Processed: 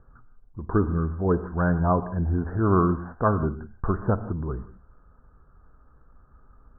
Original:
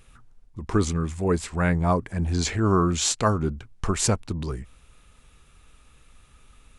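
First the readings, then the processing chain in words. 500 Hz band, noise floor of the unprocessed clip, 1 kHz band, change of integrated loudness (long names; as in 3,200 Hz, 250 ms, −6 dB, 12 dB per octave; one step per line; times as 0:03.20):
+0.5 dB, −56 dBFS, +0.5 dB, −0.5 dB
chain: Butterworth low-pass 1,600 Hz 96 dB per octave
reverb whose tail is shaped and stops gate 200 ms flat, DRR 12 dB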